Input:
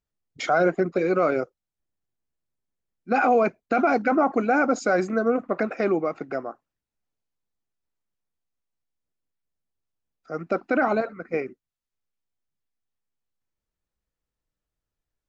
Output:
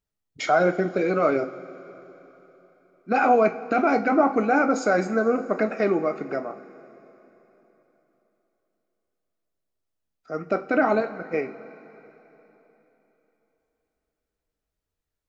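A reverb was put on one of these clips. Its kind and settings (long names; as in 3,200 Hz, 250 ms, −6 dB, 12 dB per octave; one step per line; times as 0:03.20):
coupled-rooms reverb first 0.29 s, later 3.6 s, from −18 dB, DRR 6 dB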